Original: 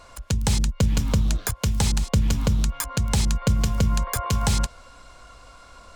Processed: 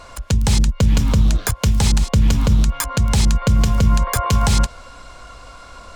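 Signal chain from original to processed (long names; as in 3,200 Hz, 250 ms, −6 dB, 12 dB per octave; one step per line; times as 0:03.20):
high-shelf EQ 8,000 Hz −4 dB
brickwall limiter −14 dBFS, peak gain reduction 5.5 dB
level +8 dB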